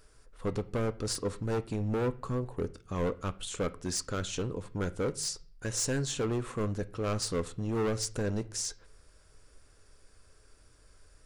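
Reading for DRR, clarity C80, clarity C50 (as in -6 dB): 11.5 dB, 24.0 dB, 19.5 dB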